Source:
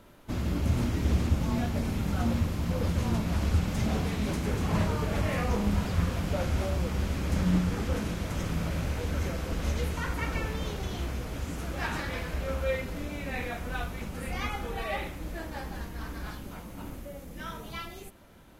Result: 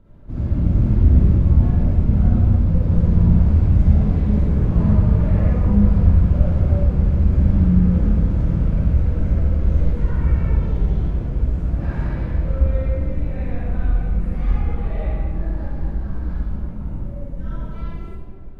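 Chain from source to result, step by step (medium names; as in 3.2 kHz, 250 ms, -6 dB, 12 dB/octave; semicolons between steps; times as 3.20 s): tilt EQ -4.5 dB/octave; reverberation RT60 2.1 s, pre-delay 43 ms, DRR -9 dB; trim -11 dB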